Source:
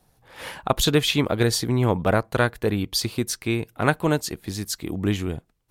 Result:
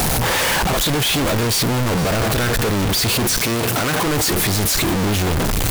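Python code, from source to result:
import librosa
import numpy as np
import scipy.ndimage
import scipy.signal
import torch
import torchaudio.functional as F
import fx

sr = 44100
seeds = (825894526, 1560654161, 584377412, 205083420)

y = np.sign(x) * np.sqrt(np.mean(np.square(x)))
y = fx.highpass(y, sr, hz=150.0, slope=6, at=(3.38, 4.06))
y = y + 10.0 ** (-15.5 / 20.0) * np.pad(y, (int(469 * sr / 1000.0), 0))[:len(y)]
y = y * librosa.db_to_amplitude(6.0)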